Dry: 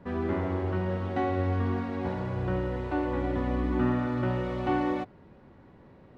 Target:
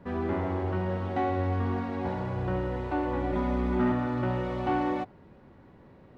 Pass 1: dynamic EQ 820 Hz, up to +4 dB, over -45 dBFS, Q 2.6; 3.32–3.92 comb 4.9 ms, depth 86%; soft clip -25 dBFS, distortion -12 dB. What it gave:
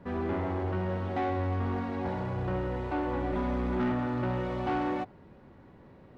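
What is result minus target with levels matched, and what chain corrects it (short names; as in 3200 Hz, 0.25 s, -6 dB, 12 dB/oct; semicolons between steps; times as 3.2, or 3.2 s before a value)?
soft clip: distortion +8 dB
dynamic EQ 820 Hz, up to +4 dB, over -45 dBFS, Q 2.6; 3.32–3.92 comb 4.9 ms, depth 86%; soft clip -18.5 dBFS, distortion -20 dB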